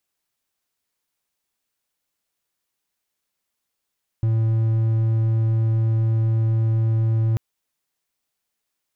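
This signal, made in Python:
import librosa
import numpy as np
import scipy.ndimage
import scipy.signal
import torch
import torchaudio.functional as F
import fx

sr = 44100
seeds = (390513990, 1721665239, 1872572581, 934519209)

y = 10.0 ** (-14.5 / 20.0) * (1.0 - 4.0 * np.abs(np.mod(112.0 * (np.arange(round(3.14 * sr)) / sr) + 0.25, 1.0) - 0.5))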